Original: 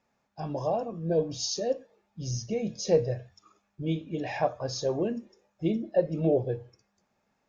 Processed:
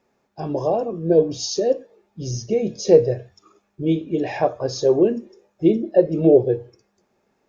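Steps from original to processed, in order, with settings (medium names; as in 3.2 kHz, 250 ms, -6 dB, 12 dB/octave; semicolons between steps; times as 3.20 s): peaking EQ 380 Hz +11 dB 0.74 oct; trim +4.5 dB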